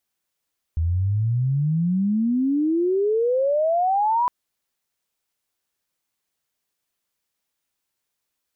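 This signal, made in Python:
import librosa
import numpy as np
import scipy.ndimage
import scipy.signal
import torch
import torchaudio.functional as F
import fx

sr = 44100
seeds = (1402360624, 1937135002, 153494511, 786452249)

y = fx.chirp(sr, length_s=3.51, from_hz=79.0, to_hz=1000.0, law='logarithmic', from_db=-18.5, to_db=-17.0)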